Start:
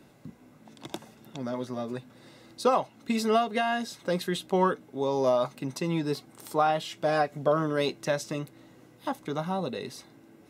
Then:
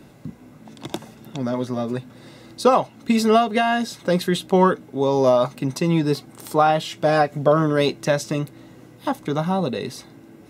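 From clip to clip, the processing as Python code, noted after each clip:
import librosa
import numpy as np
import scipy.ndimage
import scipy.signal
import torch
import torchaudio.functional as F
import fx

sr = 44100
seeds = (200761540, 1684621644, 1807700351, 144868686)

y = fx.low_shelf(x, sr, hz=220.0, db=5.5)
y = F.gain(torch.from_numpy(y), 7.0).numpy()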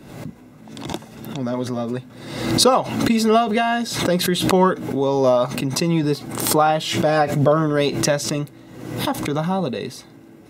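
y = fx.pre_swell(x, sr, db_per_s=57.0)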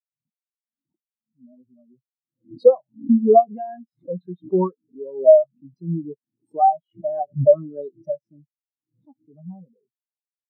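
y = fx.spectral_expand(x, sr, expansion=4.0)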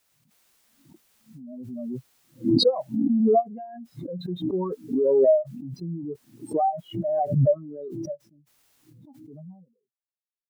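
y = fx.pre_swell(x, sr, db_per_s=21.0)
y = F.gain(torch.from_numpy(y), -8.5).numpy()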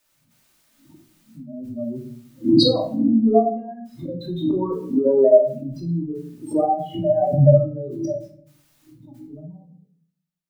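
y = fx.room_shoebox(x, sr, seeds[0], volume_m3=690.0, walls='furnished', distance_m=2.6)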